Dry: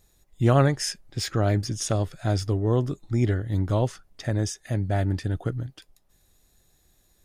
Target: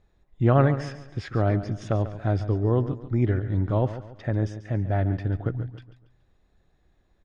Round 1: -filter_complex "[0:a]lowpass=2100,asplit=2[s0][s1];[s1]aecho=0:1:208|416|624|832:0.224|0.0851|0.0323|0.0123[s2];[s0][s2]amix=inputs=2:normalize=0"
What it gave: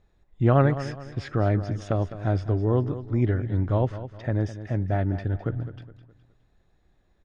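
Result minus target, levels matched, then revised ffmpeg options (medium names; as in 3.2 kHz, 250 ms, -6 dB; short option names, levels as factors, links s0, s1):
echo 67 ms late
-filter_complex "[0:a]lowpass=2100,asplit=2[s0][s1];[s1]aecho=0:1:141|282|423|564:0.224|0.0851|0.0323|0.0123[s2];[s0][s2]amix=inputs=2:normalize=0"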